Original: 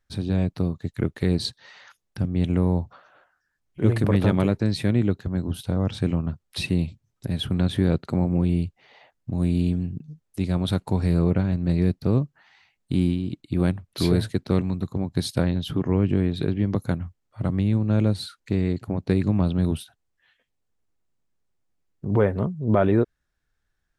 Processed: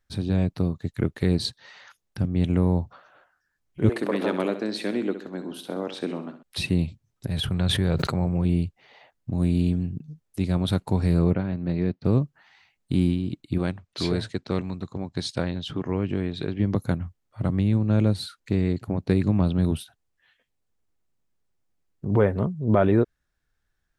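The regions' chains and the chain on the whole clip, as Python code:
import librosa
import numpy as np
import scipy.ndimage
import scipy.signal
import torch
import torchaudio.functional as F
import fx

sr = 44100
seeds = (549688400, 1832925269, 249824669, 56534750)

y = fx.chain(x, sr, fx.highpass(hz=260.0, slope=24),
    fx.high_shelf(hz=8500.0, db=-6.5),
    fx.echo_feedback(ms=65, feedback_pct=45, wet_db=-11.0), at=(3.89, 6.43))
y = fx.chain(y, sr, fx.peak_eq(hz=270.0, db=-8.0, octaves=0.98),
    fx.sustainer(db_per_s=35.0), at=(7.29, 8.45))
y = fx.chain(y, sr, fx.highpass(hz=200.0, slope=6),
    fx.air_absorb(metres=180.0), at=(11.34, 12.05))
y = fx.chain(y, sr, fx.lowpass(hz=7900.0, slope=24),
    fx.low_shelf(hz=340.0, db=-7.5), at=(13.58, 16.6))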